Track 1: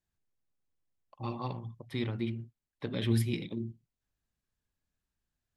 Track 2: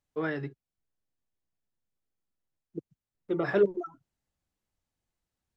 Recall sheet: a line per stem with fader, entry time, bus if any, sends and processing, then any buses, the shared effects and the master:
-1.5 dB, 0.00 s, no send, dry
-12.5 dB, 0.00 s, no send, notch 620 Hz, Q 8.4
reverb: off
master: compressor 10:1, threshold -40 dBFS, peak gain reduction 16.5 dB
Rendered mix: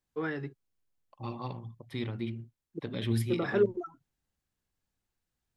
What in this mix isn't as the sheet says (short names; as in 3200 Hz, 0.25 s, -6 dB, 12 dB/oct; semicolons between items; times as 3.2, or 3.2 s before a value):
stem 2 -12.5 dB -> -2.0 dB; master: missing compressor 10:1, threshold -40 dBFS, peak gain reduction 16.5 dB